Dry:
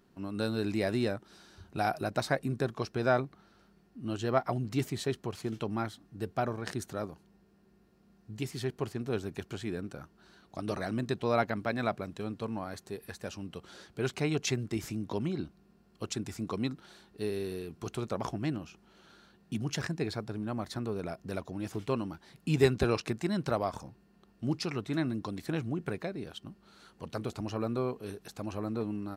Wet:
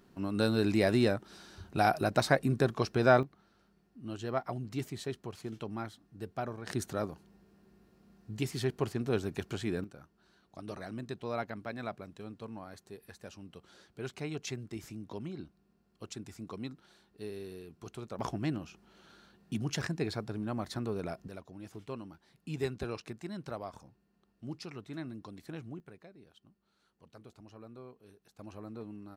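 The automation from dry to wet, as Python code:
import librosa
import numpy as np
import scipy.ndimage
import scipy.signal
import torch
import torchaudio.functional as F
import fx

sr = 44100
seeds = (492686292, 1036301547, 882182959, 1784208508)

y = fx.gain(x, sr, db=fx.steps((0.0, 3.5), (3.23, -5.5), (6.7, 2.0), (9.84, -8.0), (18.19, -0.5), (21.28, -10.0), (25.8, -17.5), (28.39, -10.0)))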